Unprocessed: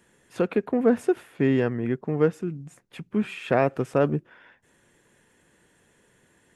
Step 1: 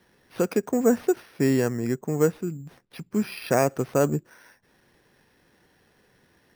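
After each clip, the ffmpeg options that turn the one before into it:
ffmpeg -i in.wav -af "acrusher=samples=6:mix=1:aa=0.000001" out.wav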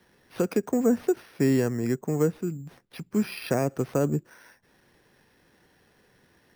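ffmpeg -i in.wav -filter_complex "[0:a]acrossover=split=400[link_01][link_02];[link_02]acompressor=threshold=-29dB:ratio=3[link_03];[link_01][link_03]amix=inputs=2:normalize=0" out.wav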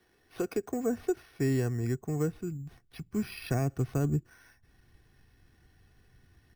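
ffmpeg -i in.wav -af "equalizer=frequency=960:width=6.7:gain=-2.5,aecho=1:1:2.7:0.48,asubboost=boost=8.5:cutoff=140,volume=-6.5dB" out.wav

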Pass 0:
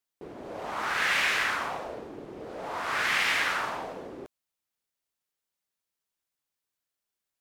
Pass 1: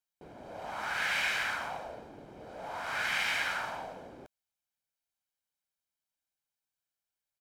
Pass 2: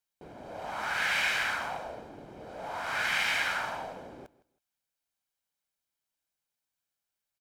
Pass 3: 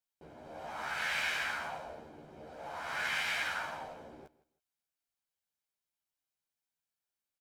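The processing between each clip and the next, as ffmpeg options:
ffmpeg -i in.wav -af "aecho=1:1:1.3:0.47,volume=-6dB" out.wav
ffmpeg -i in.wav -af "aecho=1:1:161|322:0.1|0.024,volume=2.5dB" out.wav
ffmpeg -i in.wav -filter_complex "[0:a]asplit=2[link_01][link_02];[link_02]adelay=13,volume=-3dB[link_03];[link_01][link_03]amix=inputs=2:normalize=0,volume=-7dB" out.wav

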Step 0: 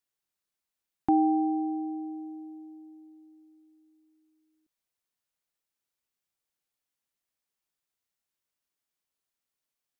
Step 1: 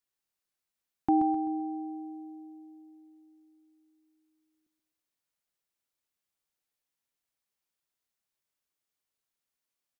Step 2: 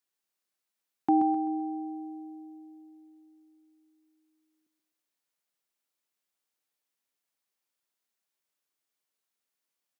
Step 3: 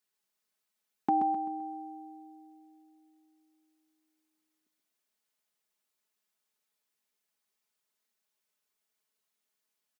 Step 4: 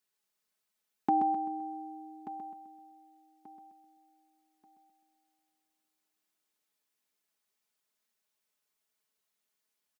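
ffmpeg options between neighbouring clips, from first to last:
ffmpeg -i in.wav -af "aecho=1:1:129|258|387|516|645:0.422|0.177|0.0744|0.0312|0.0131,volume=-1.5dB" out.wav
ffmpeg -i in.wav -af "highpass=190,volume=1.5dB" out.wav
ffmpeg -i in.wav -af "aecho=1:1:4.7:0.71" out.wav
ffmpeg -i in.wav -af "aecho=1:1:1184|2368|3552:0.2|0.0519|0.0135" out.wav

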